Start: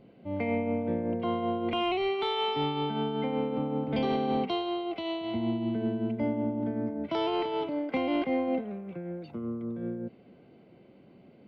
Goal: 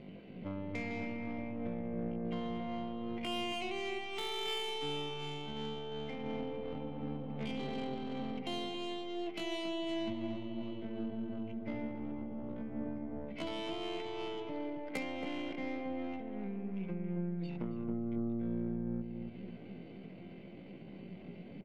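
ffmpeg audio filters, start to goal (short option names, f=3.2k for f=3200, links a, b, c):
-filter_complex "[0:a]adynamicsmooth=sensitivity=4.5:basefreq=4.5k,equalizer=f=180:w=4:g=7.5,acompressor=threshold=-41dB:ratio=20,highshelf=f=1.7k:t=q:w=1.5:g=6.5,aeval=exprs='0.0335*(cos(1*acos(clip(val(0)/0.0335,-1,1)))-cos(1*PI/2))+0.00944*(cos(4*acos(clip(val(0)/0.0335,-1,1)))-cos(4*PI/2))+0.00841*(cos(6*acos(clip(val(0)/0.0335,-1,1)))-cos(6*PI/2))+0.000422*(cos(8*acos(clip(val(0)/0.0335,-1,1)))-cos(8*PI/2))':c=same,atempo=0.53,asplit=2[a][b];[b]adelay=275,lowpass=f=830:p=1,volume=-3.5dB,asplit=2[c][d];[d]adelay=275,lowpass=f=830:p=1,volume=0.41,asplit=2[e][f];[f]adelay=275,lowpass=f=830:p=1,volume=0.41,asplit=2[g][h];[h]adelay=275,lowpass=f=830:p=1,volume=0.41,asplit=2[i][j];[j]adelay=275,lowpass=f=830:p=1,volume=0.41[k];[a][c][e][g][i][k]amix=inputs=6:normalize=0,volume=3dB"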